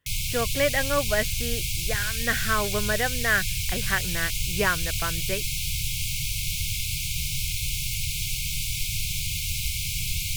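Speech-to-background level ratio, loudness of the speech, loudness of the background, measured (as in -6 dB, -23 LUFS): -0.5 dB, -28.0 LUFS, -27.5 LUFS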